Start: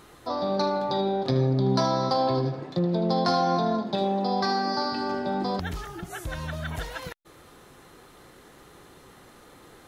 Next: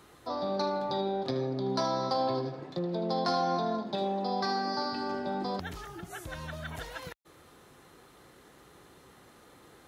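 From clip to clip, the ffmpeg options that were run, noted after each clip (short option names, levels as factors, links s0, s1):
-filter_complex "[0:a]highpass=43,acrossover=split=230[s0][s1];[s0]acompressor=threshold=0.0158:ratio=6[s2];[s2][s1]amix=inputs=2:normalize=0,volume=0.562"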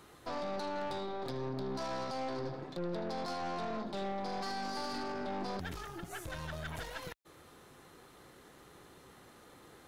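-af "alimiter=level_in=1.41:limit=0.0631:level=0:latency=1:release=17,volume=0.708,aeval=exprs='(tanh(63.1*val(0)+0.55)-tanh(0.55))/63.1':c=same,volume=1.19"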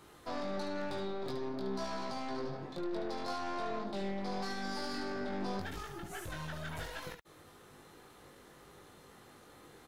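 -af "aecho=1:1:20|72:0.668|0.422,volume=0.794"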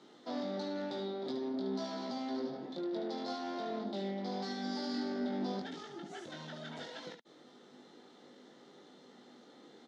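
-af "highpass=f=190:w=0.5412,highpass=f=190:w=1.3066,equalizer=f=240:t=q:w=4:g=8,equalizer=f=1100:t=q:w=4:g=-9,equalizer=f=1600:t=q:w=4:g=-5,equalizer=f=2500:t=q:w=4:g=-9,equalizer=f=3500:t=q:w=4:g=4,lowpass=f=6000:w=0.5412,lowpass=f=6000:w=1.3066"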